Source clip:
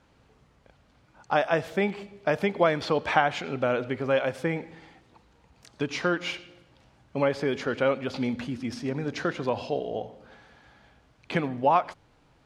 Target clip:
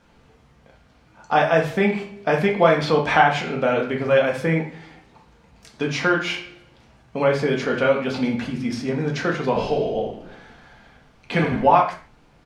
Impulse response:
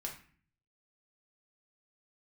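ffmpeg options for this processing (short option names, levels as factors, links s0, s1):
-filter_complex "[0:a]asplit=3[s0][s1][s2];[s0]afade=t=out:st=9.54:d=0.02[s3];[s1]asplit=7[s4][s5][s6][s7][s8][s9][s10];[s5]adelay=82,afreqshift=-50,volume=0.376[s11];[s6]adelay=164,afreqshift=-100,volume=0.195[s12];[s7]adelay=246,afreqshift=-150,volume=0.101[s13];[s8]adelay=328,afreqshift=-200,volume=0.0531[s14];[s9]adelay=410,afreqshift=-250,volume=0.0275[s15];[s10]adelay=492,afreqshift=-300,volume=0.0143[s16];[s4][s11][s12][s13][s14][s15][s16]amix=inputs=7:normalize=0,afade=t=in:st=9.54:d=0.02,afade=t=out:st=11.62:d=0.02[s17];[s2]afade=t=in:st=11.62:d=0.02[s18];[s3][s17][s18]amix=inputs=3:normalize=0[s19];[1:a]atrim=start_sample=2205,afade=t=out:st=0.24:d=0.01,atrim=end_sample=11025[s20];[s19][s20]afir=irnorm=-1:irlink=0,volume=2.37"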